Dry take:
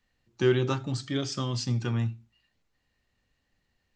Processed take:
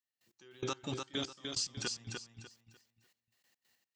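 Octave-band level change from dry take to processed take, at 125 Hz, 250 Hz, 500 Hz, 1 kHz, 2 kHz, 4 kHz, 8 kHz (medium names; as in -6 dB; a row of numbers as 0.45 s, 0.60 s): -19.0 dB, -13.5 dB, -15.0 dB, -8.0 dB, -8.5 dB, -2.0 dB, +0.5 dB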